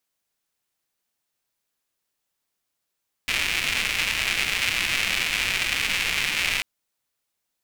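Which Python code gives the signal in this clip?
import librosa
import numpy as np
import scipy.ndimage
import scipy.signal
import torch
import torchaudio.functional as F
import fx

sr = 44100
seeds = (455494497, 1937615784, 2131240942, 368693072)

y = fx.rain(sr, seeds[0], length_s=3.34, drops_per_s=290.0, hz=2400.0, bed_db=-12.5)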